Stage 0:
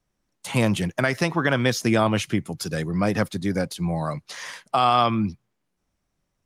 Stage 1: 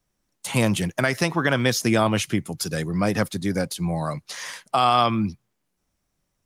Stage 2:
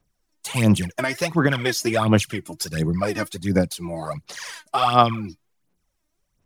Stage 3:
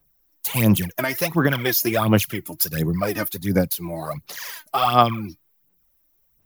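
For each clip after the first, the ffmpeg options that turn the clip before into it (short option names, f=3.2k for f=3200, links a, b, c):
-af "highshelf=f=5.8k:g=7"
-af "aphaser=in_gain=1:out_gain=1:delay=3.3:decay=0.71:speed=1.4:type=sinusoidal,volume=-3.5dB"
-af "aexciter=amount=14.5:drive=3.1:freq=12k"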